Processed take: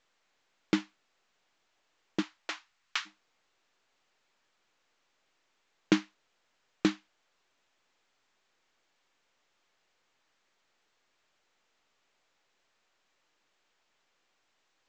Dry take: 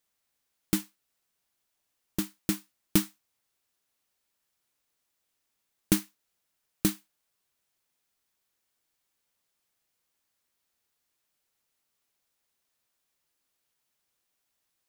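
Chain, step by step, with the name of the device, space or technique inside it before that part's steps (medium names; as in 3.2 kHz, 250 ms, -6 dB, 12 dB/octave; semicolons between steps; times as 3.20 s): 2.21–3.05 s: high-pass 420 Hz -> 1.2 kHz 24 dB/octave; telephone (band-pass 300–3100 Hz; trim +5 dB; µ-law 128 kbps 16 kHz)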